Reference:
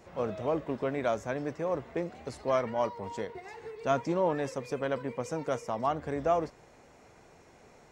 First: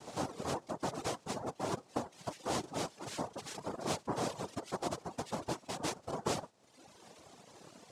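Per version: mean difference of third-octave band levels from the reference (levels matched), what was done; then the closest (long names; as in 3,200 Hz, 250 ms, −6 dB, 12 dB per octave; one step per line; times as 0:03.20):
9.5 dB: downward compressor 2.5 to 1, threshold −41 dBFS, peak gain reduction 13 dB
graphic EQ with 15 bands 160 Hz −6 dB, 1,000 Hz −3 dB, 4,000 Hz −4 dB
cochlear-implant simulation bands 2
reverb reduction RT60 1.1 s
level +4.5 dB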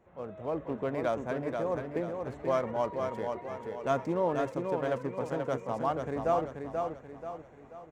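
5.0 dB: adaptive Wiener filter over 9 samples
parametric band 2,500 Hz −2 dB
automatic gain control gain up to 8 dB
on a send: repeating echo 484 ms, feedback 42%, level −5 dB
on the sum: level −9 dB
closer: second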